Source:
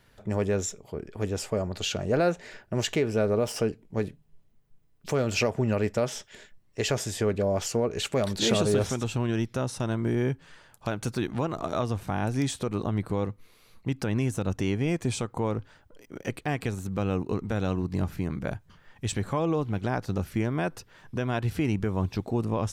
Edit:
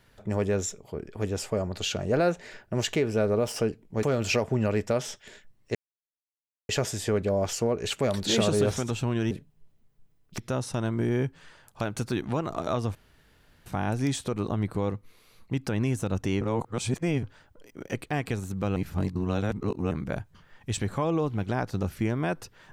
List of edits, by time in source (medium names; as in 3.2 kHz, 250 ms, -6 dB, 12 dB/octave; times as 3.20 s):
4.03–5.10 s: move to 9.44 s
6.82 s: insert silence 0.94 s
12.01 s: insert room tone 0.71 s
14.76–15.58 s: reverse
17.11–18.26 s: reverse